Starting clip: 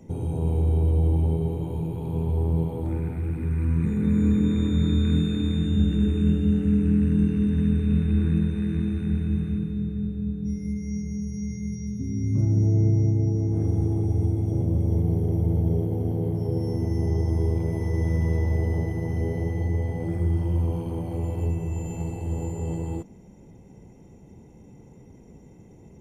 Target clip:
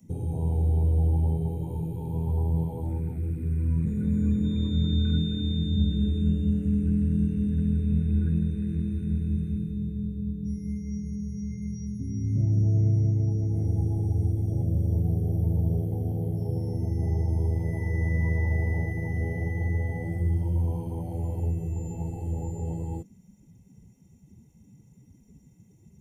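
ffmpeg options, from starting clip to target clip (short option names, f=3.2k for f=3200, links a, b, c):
-filter_complex "[0:a]acrossover=split=2500[a][b];[b]acompressor=threshold=-57dB:ratio=4:attack=1:release=60[c];[a][c]amix=inputs=2:normalize=0,afftdn=nr=20:nf=-36,acrossover=split=230|610|2200[d][e][f][g];[e]acompressor=threshold=-44dB:ratio=6[h];[d][h][f][g]amix=inputs=4:normalize=0,crystalizer=i=10:c=0,volume=-1.5dB"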